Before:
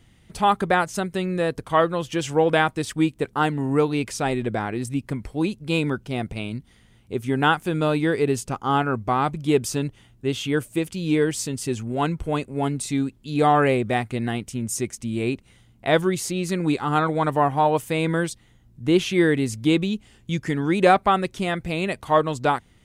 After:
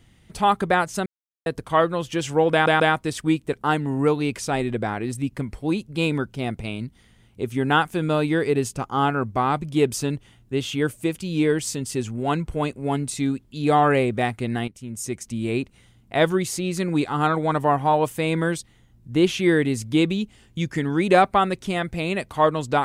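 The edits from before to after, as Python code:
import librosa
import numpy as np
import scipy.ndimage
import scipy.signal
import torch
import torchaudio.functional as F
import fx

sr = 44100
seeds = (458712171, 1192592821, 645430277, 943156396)

y = fx.edit(x, sr, fx.silence(start_s=1.06, length_s=0.4),
    fx.stutter(start_s=2.52, slice_s=0.14, count=3),
    fx.fade_in_from(start_s=14.4, length_s=0.65, floor_db=-12.5), tone=tone)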